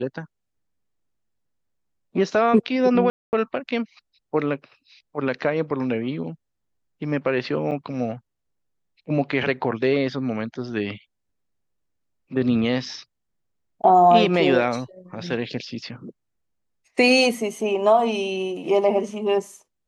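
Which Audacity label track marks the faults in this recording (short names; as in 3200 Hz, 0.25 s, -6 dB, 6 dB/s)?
3.100000	3.330000	gap 0.229 s
7.710000	7.720000	gap 6.2 ms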